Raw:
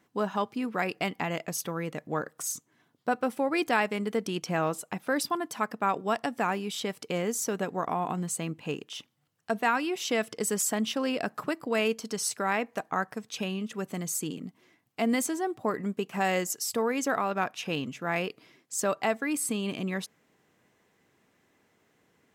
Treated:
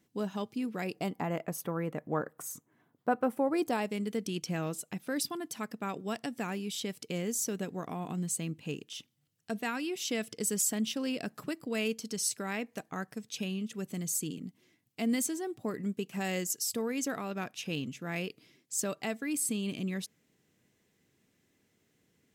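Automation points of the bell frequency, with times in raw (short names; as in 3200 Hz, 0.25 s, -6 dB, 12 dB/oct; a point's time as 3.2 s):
bell -13 dB 2.2 oct
0.79 s 1100 Hz
1.43 s 4800 Hz
3.28 s 4800 Hz
4.02 s 980 Hz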